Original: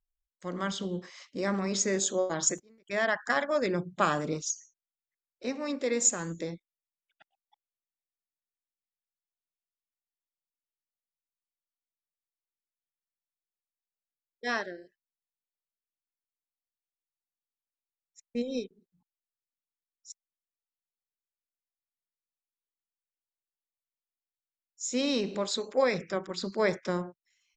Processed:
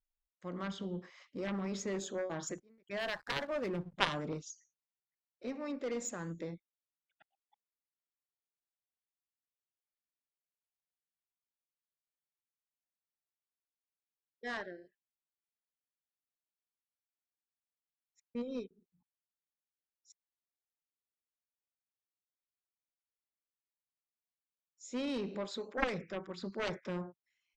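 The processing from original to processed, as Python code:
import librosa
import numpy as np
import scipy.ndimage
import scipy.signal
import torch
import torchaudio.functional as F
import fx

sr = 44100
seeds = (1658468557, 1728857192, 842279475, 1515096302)

y = fx.bass_treble(x, sr, bass_db=2, treble_db=-12)
y = fx.backlash(y, sr, play_db=-41.5, at=(2.99, 3.94))
y = fx.cheby_harmonics(y, sr, harmonics=(3,), levels_db=(-6,), full_scale_db=-11.5)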